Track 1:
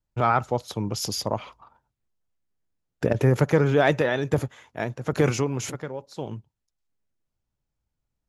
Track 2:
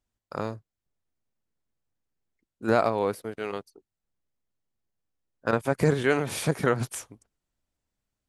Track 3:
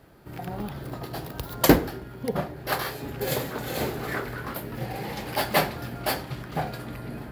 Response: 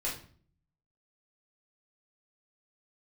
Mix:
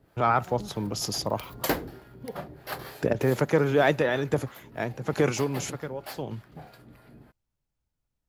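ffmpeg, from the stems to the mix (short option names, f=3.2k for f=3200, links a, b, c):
-filter_complex "[0:a]acrossover=split=180|3000[a][b][c];[a]acompressor=threshold=-32dB:ratio=6[d];[d][b][c]amix=inputs=3:normalize=0,volume=-1.5dB[e];[2:a]acrossover=split=500[f][g];[f]aeval=exprs='val(0)*(1-0.7/2+0.7/2*cos(2*PI*3.2*n/s))':c=same[h];[g]aeval=exprs='val(0)*(1-0.7/2-0.7/2*cos(2*PI*3.2*n/s))':c=same[i];[h][i]amix=inputs=2:normalize=0,volume=-5dB,afade=t=out:st=2.97:d=0.31:silence=0.421697[j];[e][j]amix=inputs=2:normalize=0"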